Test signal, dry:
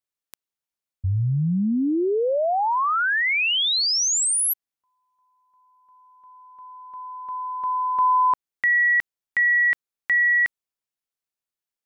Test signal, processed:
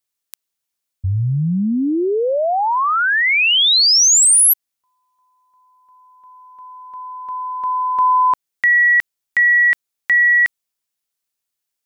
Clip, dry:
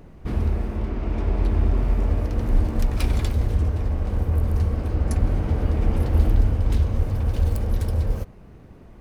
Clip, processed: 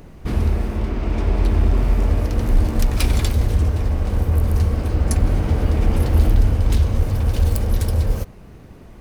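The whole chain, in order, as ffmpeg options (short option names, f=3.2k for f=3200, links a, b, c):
-filter_complex "[0:a]highshelf=f=2.9k:g=7.5,asplit=2[a][b];[b]volume=13.5dB,asoftclip=hard,volume=-13.5dB,volume=-5dB[c];[a][c]amix=inputs=2:normalize=0"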